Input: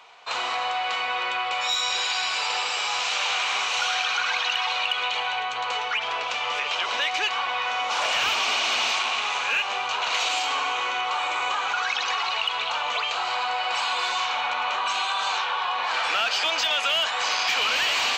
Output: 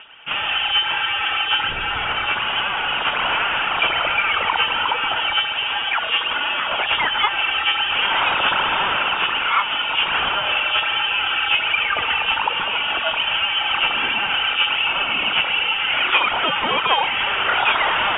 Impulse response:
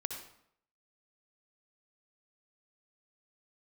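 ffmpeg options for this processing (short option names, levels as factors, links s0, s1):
-af "lowshelf=f=320:g=3.5,aphaser=in_gain=1:out_gain=1:delay=5:decay=0.51:speed=1.3:type=sinusoidal,lowpass=f=3200:t=q:w=0.5098,lowpass=f=3200:t=q:w=0.6013,lowpass=f=3200:t=q:w=0.9,lowpass=f=3200:t=q:w=2.563,afreqshift=-3800,volume=1.68"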